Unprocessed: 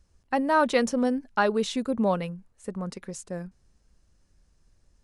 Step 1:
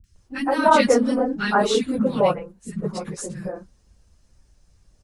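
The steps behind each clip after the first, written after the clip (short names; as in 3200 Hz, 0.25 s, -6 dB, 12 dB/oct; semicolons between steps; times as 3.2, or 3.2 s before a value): phase scrambler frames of 50 ms; three bands offset in time lows, highs, mids 40/160 ms, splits 270/1600 Hz; gain +7 dB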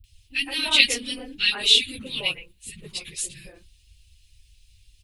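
EQ curve 100 Hz 0 dB, 200 Hz -24 dB, 300 Hz -13 dB, 600 Hz -23 dB, 1400 Hz -19 dB, 2600 Hz +13 dB, 3700 Hz +13 dB, 5900 Hz -1 dB, 12000 Hz +9 dB; gain +1.5 dB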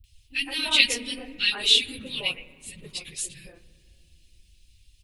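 on a send at -14.5 dB: LPF 2200 Hz 12 dB/oct + reverb RT60 2.6 s, pre-delay 3 ms; on the sum: gain -2 dB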